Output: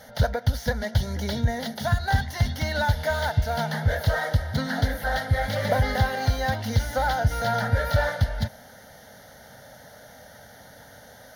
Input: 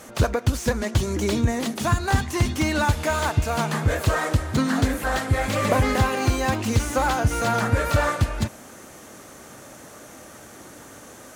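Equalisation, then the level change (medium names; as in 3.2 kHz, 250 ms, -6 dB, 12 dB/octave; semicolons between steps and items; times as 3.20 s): static phaser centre 1.7 kHz, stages 8; 0.0 dB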